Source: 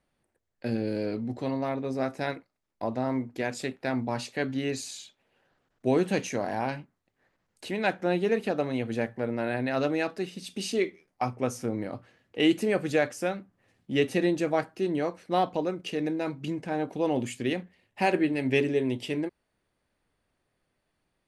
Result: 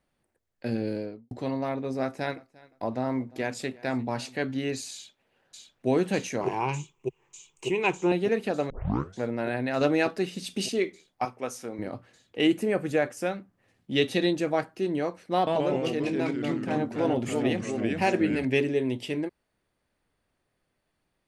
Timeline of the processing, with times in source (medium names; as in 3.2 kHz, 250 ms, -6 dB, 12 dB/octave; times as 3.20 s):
0.85–1.31 s: studio fade out
2.02–4.41 s: feedback delay 349 ms, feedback 21%, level -23 dB
4.93–5.88 s: echo throw 600 ms, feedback 85%, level -4.5 dB
6.41–8.12 s: rippled EQ curve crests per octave 0.72, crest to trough 16 dB
8.70 s: tape start 0.50 s
9.81–10.66 s: gain +4 dB
11.25–11.79 s: high-pass 610 Hz 6 dB/octave
12.47–13.17 s: peaking EQ 4.4 kHz -7 dB 1.4 oct
13.92–14.33 s: peaking EQ 3.7 kHz +12 dB 0.48 oct
15.34–18.45 s: ever faster or slower copies 128 ms, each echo -2 st, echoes 3